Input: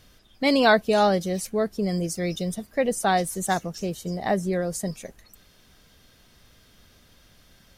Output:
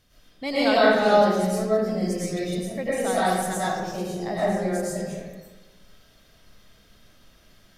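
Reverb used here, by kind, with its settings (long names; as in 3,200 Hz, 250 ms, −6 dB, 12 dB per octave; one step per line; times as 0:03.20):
comb and all-pass reverb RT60 1.3 s, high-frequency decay 0.65×, pre-delay 70 ms, DRR −9 dB
level −9 dB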